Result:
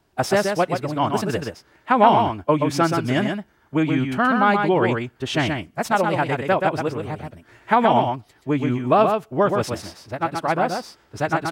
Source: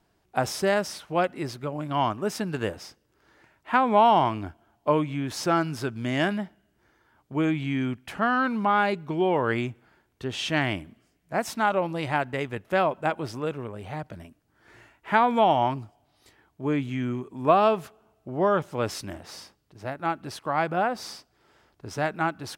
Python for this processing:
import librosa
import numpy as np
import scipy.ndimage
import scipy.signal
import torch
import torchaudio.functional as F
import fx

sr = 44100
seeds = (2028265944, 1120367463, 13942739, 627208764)

p1 = fx.stretch_vocoder(x, sr, factor=0.51)
p2 = p1 + fx.echo_single(p1, sr, ms=127, db=-5.0, dry=0)
y = p2 * librosa.db_to_amplitude(5.5)